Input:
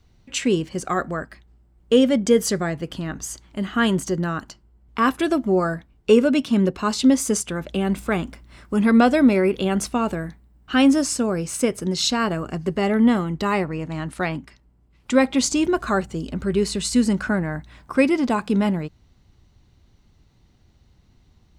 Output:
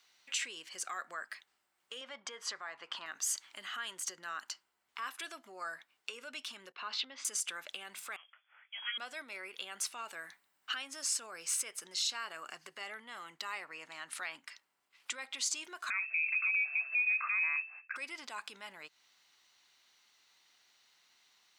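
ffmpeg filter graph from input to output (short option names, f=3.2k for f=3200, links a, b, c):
-filter_complex "[0:a]asettb=1/sr,asplit=3[a][b][c];[a]atrim=end=2.014[d];[b]atrim=start=2.01:end=3.06,asetpts=PTS-STARTPTS,afade=t=in:d=0.004:c=qsin,afade=t=out:st=1.046:d=0.004:c=qsin,highpass=140,lowpass=4.6k,equalizer=f=1k:w=1.4:g=12[e];[c]atrim=start=3.056[f];[d][e]acrossfade=d=0.004:c1=hsin:c2=qsin[g];[g][f]acrossfade=d=0.004:c1=qsin:c2=hsin,asettb=1/sr,asplit=3[h][i][j];[h]atrim=end=6.724[k];[i]atrim=start=6.72:end=7.25,asetpts=PTS-STARTPTS,afade=t=in:d=0.004:c=qsin,afade=t=out:st=0.526:d=0.004:c=qsin,lowpass=f=3.8k:w=0.5412,lowpass=f=3.8k:w=1.3066,agate=range=-33dB:threshold=-39dB:ratio=3:release=100:detection=peak,acompressor=threshold=-22dB:ratio=3:attack=3.2:release=140:knee=1:detection=peak[l];[j]atrim=start=7.246[m];[k][l]acrossfade=d=0.004:c1=hsin:c2=qsin[n];[n][m]acrossfade=d=0.004:c1=qsin:c2=hsin,asettb=1/sr,asplit=3[o][p][q];[o]atrim=end=8.164[r];[p]atrim=start=8.16:end=8.98,asetpts=PTS-STARTPTS,afade=t=in:d=0.004:c=qsin,afade=t=out:st=0.816:d=0.004:c=qsin,aderivative,lowpass=f=3k:t=q:w=0.5098,lowpass=f=3k:t=q:w=0.6013,lowpass=f=3k:t=q:w=0.9,lowpass=f=3k:t=q:w=2.563,afreqshift=-3500,asplit=2[s][t];[t]adelay=19,volume=-12.5dB[u];[s][u]amix=inputs=2:normalize=0,atrim=end_sample=36162[v];[q]atrim=start=8.976[w];[r][v]acrossfade=d=0.004:c1=hsin:c2=qsin[x];[x][w]acrossfade=d=0.004:c1=qsin:c2=hsin,asettb=1/sr,asplit=3[y][z][aa];[y]atrim=end=15.904[ab];[z]atrim=start=15.9:end=17.96,asetpts=PTS-STARTPTS,afade=t=in:d=0.004:c=qsin,afade=t=out:st=2.056:d=0.004:c=qsin,agate=range=-33dB:threshold=-40dB:ratio=3:release=100:detection=peak,acompressor=threshold=-22dB:ratio=2.5:attack=3.2:release=140:knee=1:detection=peak,lowpass=f=2.3k:t=q:w=0.5098,lowpass=f=2.3k:t=q:w=0.6013,lowpass=f=2.3k:t=q:w=0.9,lowpass=f=2.3k:t=q:w=2.563,afreqshift=-2700[ac];[aa]atrim=start=17.956[ad];[ab][ac]acrossfade=d=0.004:c1=hsin:c2=qsin[ae];[ae][ad]acrossfade=d=0.004:c1=qsin:c2=hsin,acompressor=threshold=-32dB:ratio=3,alimiter=level_in=3dB:limit=-24dB:level=0:latency=1:release=36,volume=-3dB,highpass=1.5k,volume=3.5dB"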